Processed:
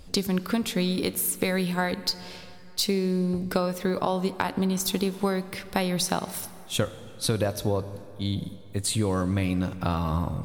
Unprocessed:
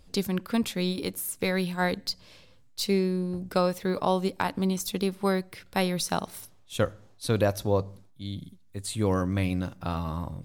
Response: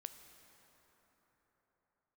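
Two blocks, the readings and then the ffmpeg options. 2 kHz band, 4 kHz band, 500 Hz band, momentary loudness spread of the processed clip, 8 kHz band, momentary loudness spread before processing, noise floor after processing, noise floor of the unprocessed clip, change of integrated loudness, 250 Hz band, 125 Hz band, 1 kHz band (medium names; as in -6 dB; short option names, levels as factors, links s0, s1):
+1.0 dB, +4.0 dB, 0.0 dB, 7 LU, +5.5 dB, 12 LU, -44 dBFS, -56 dBFS, +1.5 dB, +2.0 dB, +2.0 dB, +0.5 dB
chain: -filter_complex "[0:a]acompressor=threshold=0.0282:ratio=6,asplit=2[s0][s1];[1:a]atrim=start_sample=2205,asetrate=61740,aresample=44100[s2];[s1][s2]afir=irnorm=-1:irlink=0,volume=2.37[s3];[s0][s3]amix=inputs=2:normalize=0,volume=1.41"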